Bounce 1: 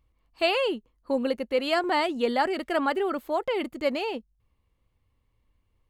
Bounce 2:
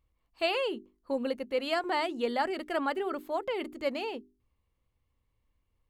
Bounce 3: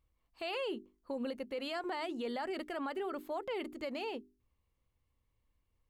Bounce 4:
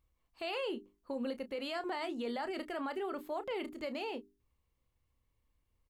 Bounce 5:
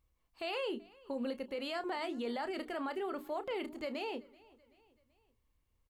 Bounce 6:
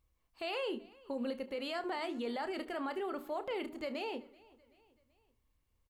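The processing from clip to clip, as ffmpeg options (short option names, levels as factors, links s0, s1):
-af "bandreject=f=50:t=h:w=6,bandreject=f=100:t=h:w=6,bandreject=f=150:t=h:w=6,bandreject=f=200:t=h:w=6,bandreject=f=250:t=h:w=6,bandreject=f=300:t=h:w=6,bandreject=f=350:t=h:w=6,bandreject=f=400:t=h:w=6,volume=0.562"
-af "alimiter=level_in=1.5:limit=0.0631:level=0:latency=1:release=48,volume=0.668,volume=0.75"
-filter_complex "[0:a]asplit=2[s0][s1];[s1]adelay=30,volume=0.251[s2];[s0][s2]amix=inputs=2:normalize=0"
-af "aecho=1:1:382|764|1146:0.0631|0.0309|0.0151"
-filter_complex "[0:a]asplit=2[s0][s1];[s1]adelay=73,lowpass=f=3800:p=1,volume=0.126,asplit=2[s2][s3];[s3]adelay=73,lowpass=f=3800:p=1,volume=0.39,asplit=2[s4][s5];[s5]adelay=73,lowpass=f=3800:p=1,volume=0.39[s6];[s0][s2][s4][s6]amix=inputs=4:normalize=0"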